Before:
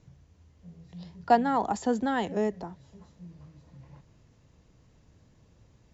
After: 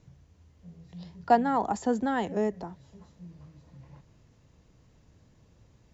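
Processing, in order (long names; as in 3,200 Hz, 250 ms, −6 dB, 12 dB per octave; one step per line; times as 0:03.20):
dynamic equaliser 3,700 Hz, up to −4 dB, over −50 dBFS, Q 1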